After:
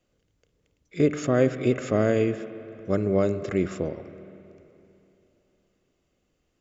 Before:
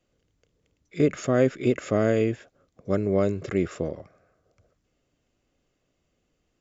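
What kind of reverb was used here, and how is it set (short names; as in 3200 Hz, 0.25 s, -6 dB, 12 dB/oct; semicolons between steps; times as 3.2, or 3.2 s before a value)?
spring tank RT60 3.1 s, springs 47/57 ms, chirp 65 ms, DRR 12 dB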